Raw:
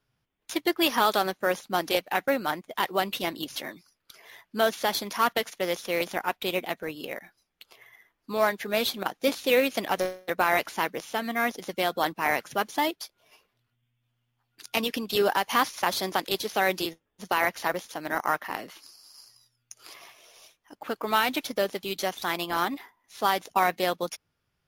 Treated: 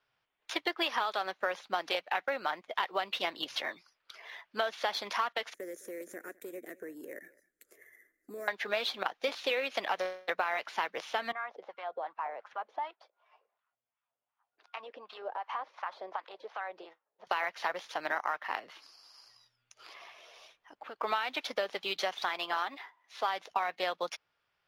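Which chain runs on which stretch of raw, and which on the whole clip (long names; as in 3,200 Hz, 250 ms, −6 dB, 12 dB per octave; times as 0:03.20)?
0:05.54–0:08.48: drawn EQ curve 160 Hz 0 dB, 320 Hz +11 dB, 590 Hz −3 dB, 870 Hz −28 dB, 1,800 Hz −3 dB, 2,900 Hz −26 dB, 4,700 Hz −17 dB, 7,500 Hz +14 dB + downward compressor 5 to 1, threshold −34 dBFS + single-tap delay 209 ms −22.5 dB
0:11.32–0:17.27: downward compressor 4 to 1, threshold −30 dBFS + LFO wah 2.7 Hz 500–1,200 Hz, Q 2.2
0:18.59–0:21.00: low-shelf EQ 430 Hz +8 dB + downward compressor 2 to 1, threshold −51 dBFS
0:22.29–0:23.28: gain on one half-wave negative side −3 dB + high-pass filter 210 Hz 6 dB per octave
whole clip: three-way crossover with the lows and the highs turned down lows −18 dB, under 500 Hz, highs −20 dB, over 4,800 Hz; downward compressor 10 to 1, threshold −31 dBFS; level +3 dB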